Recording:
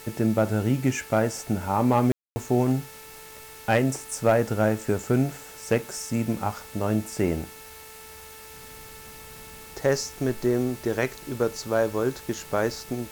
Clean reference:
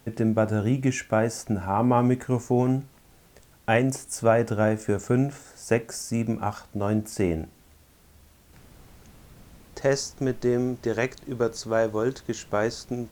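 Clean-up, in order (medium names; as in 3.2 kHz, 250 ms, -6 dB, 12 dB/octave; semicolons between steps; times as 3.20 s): clip repair -12 dBFS; de-hum 439.6 Hz, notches 6; room tone fill 2.12–2.36 s; noise reduction 11 dB, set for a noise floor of -44 dBFS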